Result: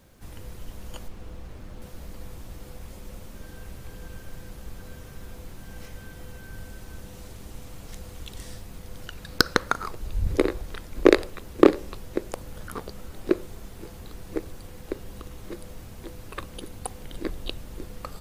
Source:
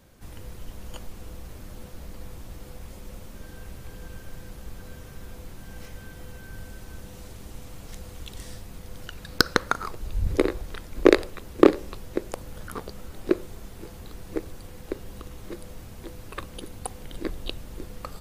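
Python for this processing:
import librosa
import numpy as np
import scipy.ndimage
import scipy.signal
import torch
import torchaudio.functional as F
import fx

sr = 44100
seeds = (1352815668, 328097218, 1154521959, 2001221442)

y = fx.high_shelf(x, sr, hz=6000.0, db=-12.0, at=(1.08, 1.82))
y = fx.quant_dither(y, sr, seeds[0], bits=12, dither='none')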